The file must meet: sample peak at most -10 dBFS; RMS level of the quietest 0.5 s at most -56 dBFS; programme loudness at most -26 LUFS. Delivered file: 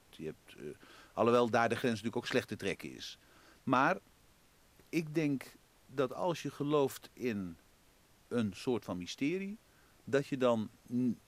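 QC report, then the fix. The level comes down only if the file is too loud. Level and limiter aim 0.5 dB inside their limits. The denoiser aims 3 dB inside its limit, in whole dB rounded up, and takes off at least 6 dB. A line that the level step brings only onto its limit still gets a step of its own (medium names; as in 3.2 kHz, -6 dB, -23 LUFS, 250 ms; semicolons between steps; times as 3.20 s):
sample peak -14.5 dBFS: pass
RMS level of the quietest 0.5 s -66 dBFS: pass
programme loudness -35.0 LUFS: pass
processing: none needed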